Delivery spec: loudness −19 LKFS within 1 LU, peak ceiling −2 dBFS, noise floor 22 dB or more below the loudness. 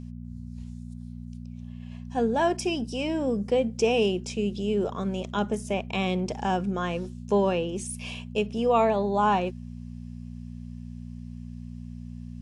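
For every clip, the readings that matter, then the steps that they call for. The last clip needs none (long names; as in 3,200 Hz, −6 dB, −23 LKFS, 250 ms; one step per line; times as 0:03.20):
mains hum 60 Hz; hum harmonics up to 240 Hz; level of the hum −36 dBFS; integrated loudness −27.0 LKFS; sample peak −10.5 dBFS; target loudness −19.0 LKFS
→ hum removal 60 Hz, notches 4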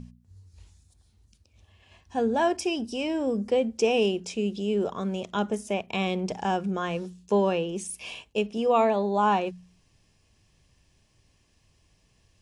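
mains hum none found; integrated loudness −27.0 LKFS; sample peak −11.0 dBFS; target loudness −19.0 LKFS
→ level +8 dB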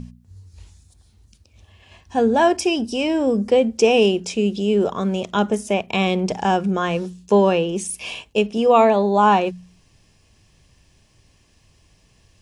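integrated loudness −19.0 LKFS; sample peak −3.0 dBFS; background noise floor −58 dBFS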